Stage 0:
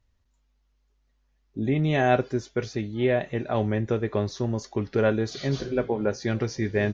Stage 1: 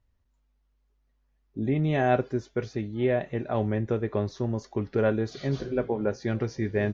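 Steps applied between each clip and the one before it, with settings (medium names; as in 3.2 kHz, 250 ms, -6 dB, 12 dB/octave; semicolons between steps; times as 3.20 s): treble shelf 2.8 kHz -8.5 dB; trim -1.5 dB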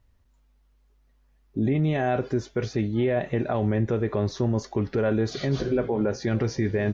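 peak limiter -24 dBFS, peak gain reduction 11.5 dB; trim +8 dB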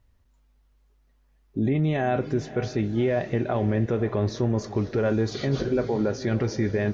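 echo that smears into a reverb 537 ms, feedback 42%, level -14.5 dB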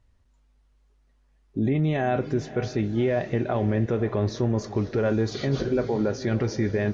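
resampled via 22.05 kHz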